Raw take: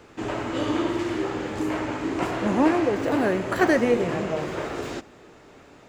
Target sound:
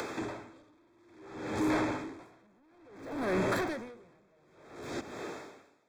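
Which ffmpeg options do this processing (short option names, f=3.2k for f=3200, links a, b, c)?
-filter_complex "[0:a]highpass=73,acrossover=split=240[a][b];[b]acompressor=mode=upward:threshold=-32dB:ratio=2.5[c];[a][c]amix=inputs=2:normalize=0,alimiter=limit=-16dB:level=0:latency=1:release=93,asoftclip=type=tanh:threshold=-28dB,asuperstop=centerf=2900:order=20:qfactor=6.1,aeval=exprs='val(0)*pow(10,-38*(0.5-0.5*cos(2*PI*0.58*n/s))/20)':c=same,volume=3.5dB"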